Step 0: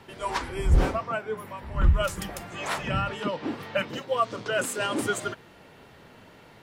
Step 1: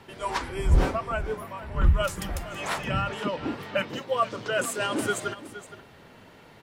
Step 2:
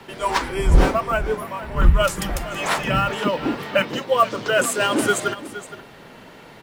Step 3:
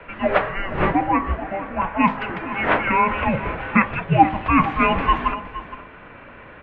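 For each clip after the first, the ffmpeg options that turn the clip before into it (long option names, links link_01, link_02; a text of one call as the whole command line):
ffmpeg -i in.wav -af "aecho=1:1:467:0.188" out.wav
ffmpeg -i in.wav -filter_complex "[0:a]equalizer=frequency=86:width=2.4:gain=-11,acrossover=split=140|830|4800[link_01][link_02][link_03][link_04];[link_03]acrusher=bits=6:mode=log:mix=0:aa=0.000001[link_05];[link_01][link_02][link_05][link_04]amix=inputs=4:normalize=0,volume=8dB" out.wav
ffmpeg -i in.wav -af "tiltshelf=frequency=710:gain=-3.5,highpass=frequency=380:width_type=q:width=0.5412,highpass=frequency=380:width_type=q:width=1.307,lowpass=frequency=2900:width_type=q:width=0.5176,lowpass=frequency=2900:width_type=q:width=0.7071,lowpass=frequency=2900:width_type=q:width=1.932,afreqshift=-370,bandreject=frequency=51.61:width_type=h:width=4,bandreject=frequency=103.22:width_type=h:width=4,bandreject=frequency=154.83:width_type=h:width=4,bandreject=frequency=206.44:width_type=h:width=4,bandreject=frequency=258.05:width_type=h:width=4,bandreject=frequency=309.66:width_type=h:width=4,bandreject=frequency=361.27:width_type=h:width=4,bandreject=frequency=412.88:width_type=h:width=4,bandreject=frequency=464.49:width_type=h:width=4,bandreject=frequency=516.1:width_type=h:width=4,bandreject=frequency=567.71:width_type=h:width=4,bandreject=frequency=619.32:width_type=h:width=4,bandreject=frequency=670.93:width_type=h:width=4,bandreject=frequency=722.54:width_type=h:width=4,bandreject=frequency=774.15:width_type=h:width=4,bandreject=frequency=825.76:width_type=h:width=4,bandreject=frequency=877.37:width_type=h:width=4,bandreject=frequency=928.98:width_type=h:width=4,bandreject=frequency=980.59:width_type=h:width=4,bandreject=frequency=1032.2:width_type=h:width=4,bandreject=frequency=1083.81:width_type=h:width=4,bandreject=frequency=1135.42:width_type=h:width=4,bandreject=frequency=1187.03:width_type=h:width=4,volume=3dB" out.wav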